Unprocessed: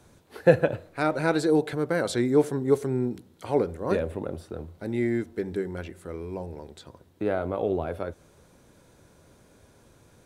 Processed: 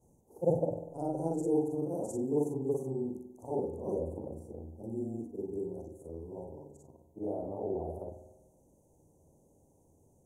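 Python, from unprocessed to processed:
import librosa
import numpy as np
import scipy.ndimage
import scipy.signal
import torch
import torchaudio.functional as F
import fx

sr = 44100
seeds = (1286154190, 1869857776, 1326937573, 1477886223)

y = fx.frame_reverse(x, sr, frame_ms=122.0)
y = scipy.signal.sosfilt(scipy.signal.cheby1(4, 1.0, [870.0, 6400.0], 'bandstop', fs=sr, output='sos'), y)
y = fx.rev_spring(y, sr, rt60_s=1.1, pass_ms=(48,), chirp_ms=50, drr_db=7.5)
y = y * librosa.db_to_amplitude(-5.5)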